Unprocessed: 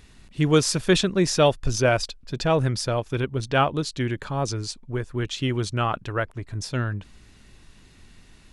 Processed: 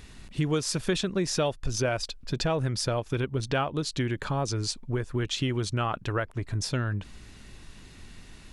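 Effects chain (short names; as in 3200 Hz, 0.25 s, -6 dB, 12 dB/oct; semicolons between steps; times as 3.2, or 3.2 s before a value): compressor 4:1, threshold -29 dBFS, peak gain reduction 14 dB; gain +3.5 dB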